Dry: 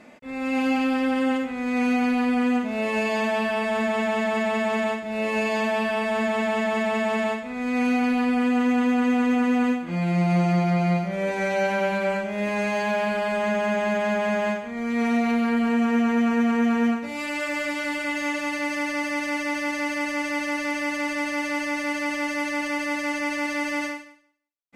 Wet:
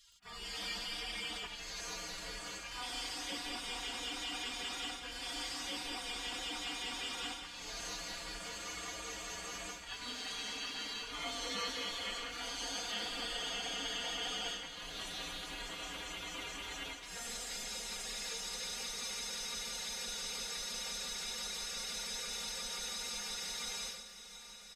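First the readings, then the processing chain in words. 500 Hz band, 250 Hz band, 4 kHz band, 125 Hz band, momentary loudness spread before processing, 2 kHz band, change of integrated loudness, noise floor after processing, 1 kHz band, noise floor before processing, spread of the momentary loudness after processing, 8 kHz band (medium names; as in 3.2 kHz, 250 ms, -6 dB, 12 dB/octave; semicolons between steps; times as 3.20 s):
-25.0 dB, -30.5 dB, +0.5 dB, -27.5 dB, 5 LU, -17.0 dB, -15.5 dB, -49 dBFS, -19.0 dB, -34 dBFS, 5 LU, +1.5 dB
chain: low-pass 3.3 kHz 6 dB/octave; resonant low shelf 260 Hz -6 dB, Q 3; hum notches 60/120/180/240/300/360/420/480/540/600 Hz; spectral gate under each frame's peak -30 dB weak; comb 4.2 ms, depth 91%; in parallel at -2 dB: peak limiter -42 dBFS, peak gain reduction 10.5 dB; on the sum: crackle 38 per s -58 dBFS; on a send: echo that smears into a reverb 728 ms, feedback 73%, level -14 dB; on the sum: trim +2.5 dB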